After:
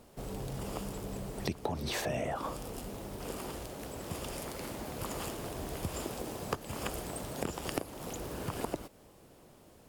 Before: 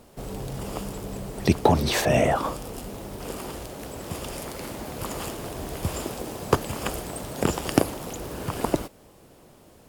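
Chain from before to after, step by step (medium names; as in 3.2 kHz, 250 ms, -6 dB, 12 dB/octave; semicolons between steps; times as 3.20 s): compression 6:1, threshold -26 dBFS, peak gain reduction 13.5 dB; trim -5.5 dB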